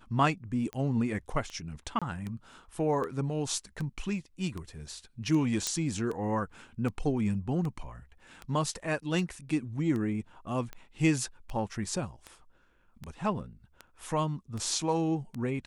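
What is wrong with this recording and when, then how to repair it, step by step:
tick 78 rpm -25 dBFS
1.99–2.02 s: dropout 26 ms
5.67 s: pop -14 dBFS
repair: de-click; interpolate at 1.99 s, 26 ms

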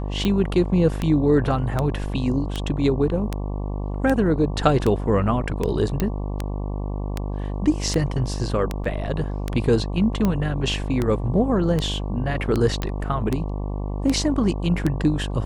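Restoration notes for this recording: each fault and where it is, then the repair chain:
buzz 50 Hz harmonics 23 -27 dBFS
tick 78 rpm -10 dBFS
6.00 s: pop -9 dBFS
8.84 s: dropout 4.6 ms
12.82 s: pop -13 dBFS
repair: de-click; de-hum 50 Hz, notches 23; interpolate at 8.84 s, 4.6 ms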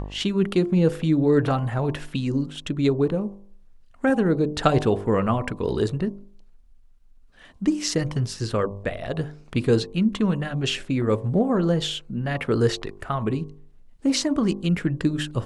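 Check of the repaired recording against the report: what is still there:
nothing left

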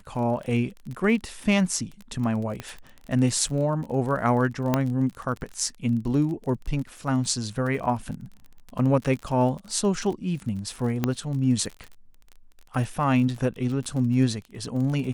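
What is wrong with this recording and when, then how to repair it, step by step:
crackle 29 per s -32 dBFS
2.60 s: pop -18 dBFS
4.74 s: pop -8 dBFS
11.04 s: pop -10 dBFS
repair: de-click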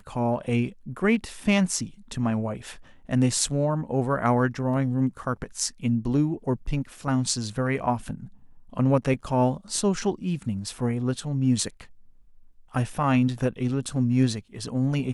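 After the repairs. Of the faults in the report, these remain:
4.74 s: pop

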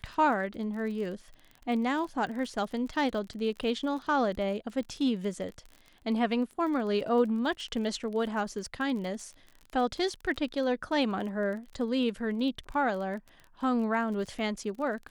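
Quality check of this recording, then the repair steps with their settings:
crackle 34 per s -38 dBFS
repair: de-click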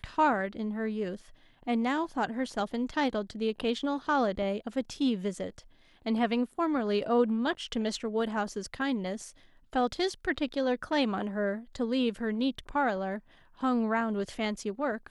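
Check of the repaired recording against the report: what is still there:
nothing left

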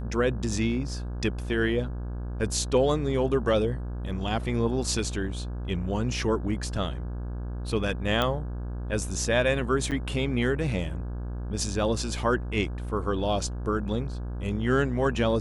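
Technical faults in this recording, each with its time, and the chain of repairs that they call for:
buzz 60 Hz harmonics 28 -33 dBFS
8.22 s: pop -12 dBFS
9.91–9.92 s: dropout 8.2 ms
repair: de-click; de-hum 60 Hz, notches 28; interpolate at 9.91 s, 8.2 ms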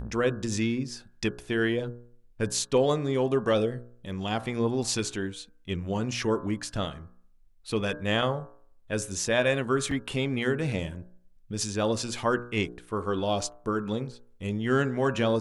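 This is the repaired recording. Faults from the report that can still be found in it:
nothing left

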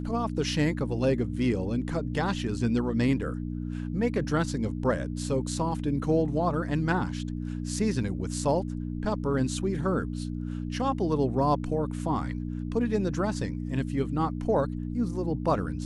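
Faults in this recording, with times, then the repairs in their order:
hum 60 Hz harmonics 5 -33 dBFS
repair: de-hum 60 Hz, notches 5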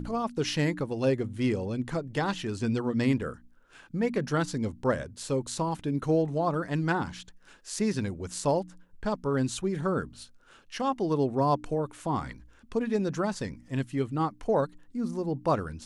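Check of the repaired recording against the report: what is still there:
nothing left

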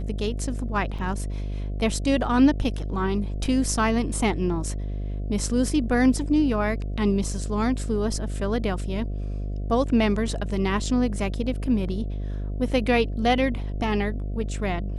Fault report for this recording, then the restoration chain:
buzz 50 Hz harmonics 14 -29 dBFS
0.98–0.99 s: dropout 5.7 ms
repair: de-hum 50 Hz, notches 14; interpolate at 0.98 s, 5.7 ms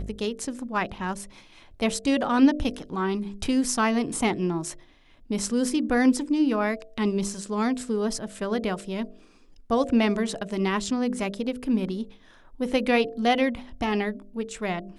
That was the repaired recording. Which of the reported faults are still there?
nothing left

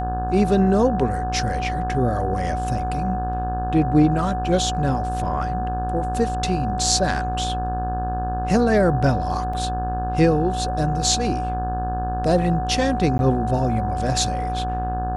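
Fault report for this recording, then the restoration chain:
buzz 60 Hz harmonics 29 -27 dBFS
whine 740 Hz -25 dBFS
9.53 s: dropout 4.5 ms
13.18–13.19 s: dropout 11 ms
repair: de-hum 60 Hz, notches 29; band-stop 740 Hz, Q 30; interpolate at 9.53 s, 4.5 ms; interpolate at 13.18 s, 11 ms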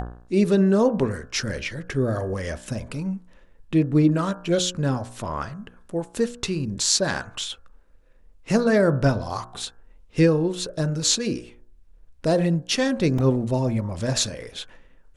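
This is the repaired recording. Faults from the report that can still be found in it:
nothing left

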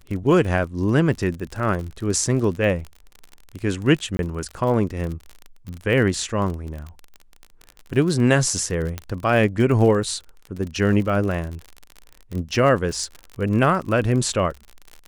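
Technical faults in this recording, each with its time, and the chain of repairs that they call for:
crackle 42 per s -28 dBFS
4.17–4.19 s: dropout 21 ms
8.98 s: pop -13 dBFS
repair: de-click; interpolate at 4.17 s, 21 ms

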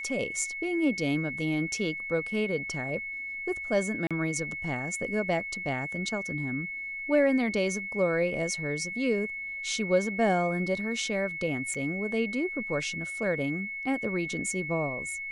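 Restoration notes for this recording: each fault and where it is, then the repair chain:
whine 2.2 kHz -34 dBFS
4.07–4.11 s: dropout 36 ms
11.74–11.75 s: dropout 5.2 ms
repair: band-stop 2.2 kHz, Q 30; interpolate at 4.07 s, 36 ms; interpolate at 11.74 s, 5.2 ms

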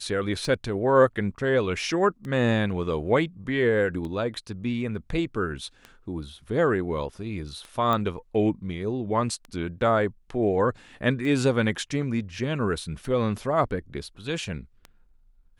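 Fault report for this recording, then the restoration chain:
tick 33 1/3 rpm
7.93 s: pop -14 dBFS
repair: de-click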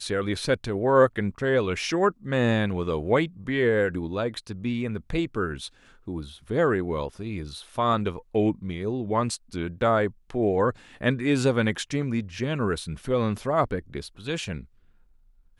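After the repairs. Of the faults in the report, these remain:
nothing left

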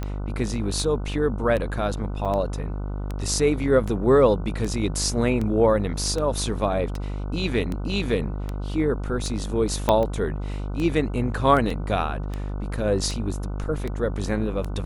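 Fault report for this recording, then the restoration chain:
buzz 50 Hz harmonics 30 -29 dBFS
tick 78 rpm -17 dBFS
2.25–2.26 s: dropout 5.9 ms
9.89 s: pop -7 dBFS
11.70 s: dropout 3.8 ms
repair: de-click; de-hum 50 Hz, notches 30; interpolate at 2.25 s, 5.9 ms; interpolate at 11.70 s, 3.8 ms

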